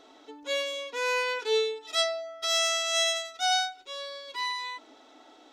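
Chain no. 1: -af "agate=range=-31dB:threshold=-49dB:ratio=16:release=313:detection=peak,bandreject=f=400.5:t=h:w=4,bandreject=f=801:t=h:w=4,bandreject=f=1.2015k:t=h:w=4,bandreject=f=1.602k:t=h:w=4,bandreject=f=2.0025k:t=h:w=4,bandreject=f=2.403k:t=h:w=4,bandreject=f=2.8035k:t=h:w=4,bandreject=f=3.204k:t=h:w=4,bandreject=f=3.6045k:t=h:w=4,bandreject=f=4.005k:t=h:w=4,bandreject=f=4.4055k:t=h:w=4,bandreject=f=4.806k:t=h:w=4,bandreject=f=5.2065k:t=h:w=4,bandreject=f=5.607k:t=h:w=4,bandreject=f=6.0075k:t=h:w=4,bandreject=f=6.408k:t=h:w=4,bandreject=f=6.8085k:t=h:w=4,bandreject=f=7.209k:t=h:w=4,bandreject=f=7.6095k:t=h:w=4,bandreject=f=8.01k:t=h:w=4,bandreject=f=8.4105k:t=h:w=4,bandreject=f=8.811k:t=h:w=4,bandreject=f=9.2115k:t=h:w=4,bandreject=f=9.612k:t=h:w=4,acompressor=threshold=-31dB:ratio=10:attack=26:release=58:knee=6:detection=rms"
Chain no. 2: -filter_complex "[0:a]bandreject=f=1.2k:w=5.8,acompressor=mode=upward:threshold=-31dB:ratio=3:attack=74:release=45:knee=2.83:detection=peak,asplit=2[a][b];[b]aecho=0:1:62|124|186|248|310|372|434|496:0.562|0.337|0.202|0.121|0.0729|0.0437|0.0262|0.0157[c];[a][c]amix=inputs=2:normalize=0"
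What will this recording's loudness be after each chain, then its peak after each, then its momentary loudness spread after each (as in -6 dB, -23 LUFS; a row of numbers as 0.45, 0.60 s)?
-33.0, -26.0 LUFS; -22.0, -3.5 dBFS; 8, 9 LU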